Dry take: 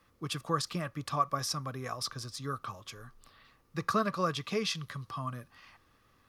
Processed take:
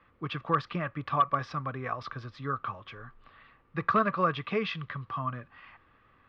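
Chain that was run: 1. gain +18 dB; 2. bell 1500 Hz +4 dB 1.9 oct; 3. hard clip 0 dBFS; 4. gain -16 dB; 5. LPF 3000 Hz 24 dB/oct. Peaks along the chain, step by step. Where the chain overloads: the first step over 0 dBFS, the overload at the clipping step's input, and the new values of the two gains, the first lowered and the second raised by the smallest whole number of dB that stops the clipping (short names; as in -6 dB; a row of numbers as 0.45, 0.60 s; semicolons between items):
+2.5, +5.5, 0.0, -16.0, -15.0 dBFS; step 1, 5.5 dB; step 1 +12 dB, step 4 -10 dB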